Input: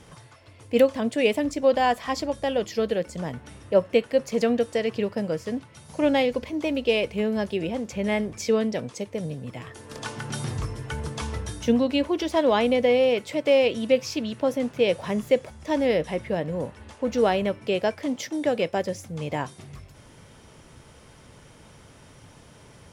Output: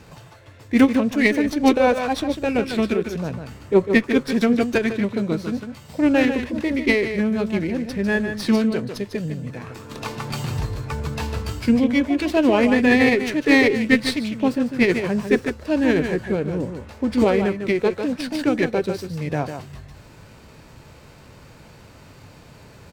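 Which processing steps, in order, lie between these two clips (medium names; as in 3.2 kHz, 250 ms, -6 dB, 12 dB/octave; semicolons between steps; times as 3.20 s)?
delay 150 ms -8 dB; formant shift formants -4 st; sliding maximum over 3 samples; trim +4 dB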